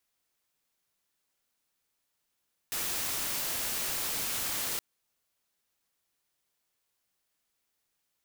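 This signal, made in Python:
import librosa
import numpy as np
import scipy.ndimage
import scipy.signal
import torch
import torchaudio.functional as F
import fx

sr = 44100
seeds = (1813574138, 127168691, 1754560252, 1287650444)

y = fx.noise_colour(sr, seeds[0], length_s=2.07, colour='white', level_db=-33.0)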